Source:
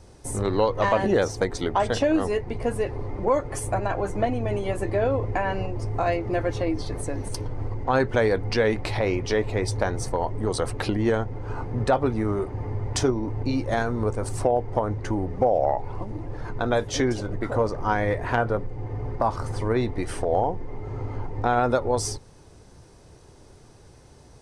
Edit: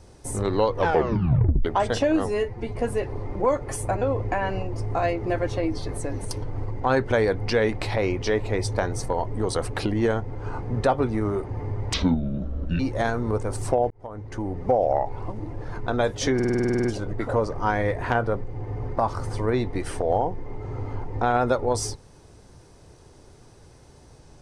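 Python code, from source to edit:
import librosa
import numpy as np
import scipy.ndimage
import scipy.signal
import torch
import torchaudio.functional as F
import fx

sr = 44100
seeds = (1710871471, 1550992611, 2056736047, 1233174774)

y = fx.edit(x, sr, fx.tape_stop(start_s=0.73, length_s=0.92),
    fx.stretch_span(start_s=2.26, length_s=0.33, factor=1.5),
    fx.cut(start_s=3.85, length_s=1.2),
    fx.speed_span(start_s=12.97, length_s=0.55, speed=0.64),
    fx.fade_in_span(start_s=14.63, length_s=0.79),
    fx.stutter(start_s=17.07, slice_s=0.05, count=11), tone=tone)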